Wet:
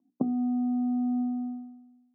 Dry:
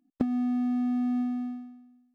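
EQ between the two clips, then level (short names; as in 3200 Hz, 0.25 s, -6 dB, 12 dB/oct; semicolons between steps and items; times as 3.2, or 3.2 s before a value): Chebyshev band-pass 120–1100 Hz, order 5; air absorption 360 m; notches 60/120/180/240/300/360/420/480 Hz; +2.0 dB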